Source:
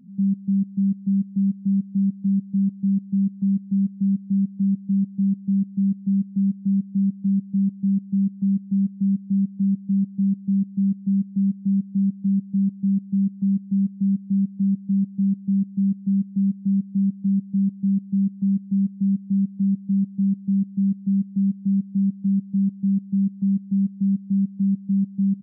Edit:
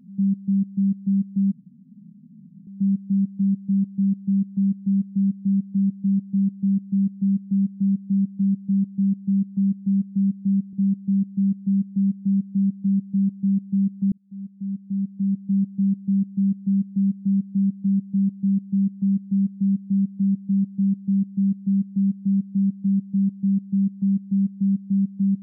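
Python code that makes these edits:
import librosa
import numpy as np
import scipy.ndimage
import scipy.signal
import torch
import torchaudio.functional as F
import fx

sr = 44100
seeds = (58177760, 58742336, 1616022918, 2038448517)

y = fx.edit(x, sr, fx.insert_room_tone(at_s=1.52, length_s=1.15),
    fx.cut(start_s=9.58, length_s=0.55),
    fx.fade_in_span(start_s=13.52, length_s=1.43), tone=tone)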